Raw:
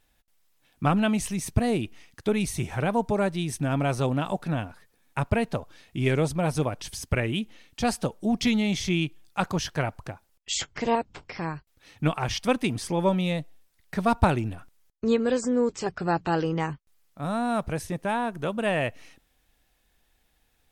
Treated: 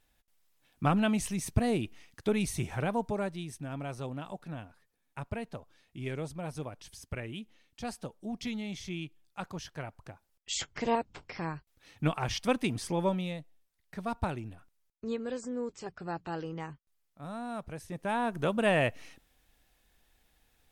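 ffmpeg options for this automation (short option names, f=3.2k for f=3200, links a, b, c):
-af "volume=16dB,afade=t=out:st=2.6:d=0.99:silence=0.354813,afade=t=in:st=9.94:d=0.74:silence=0.375837,afade=t=out:st=12.95:d=0.44:silence=0.421697,afade=t=in:st=17.84:d=0.56:silence=0.266073"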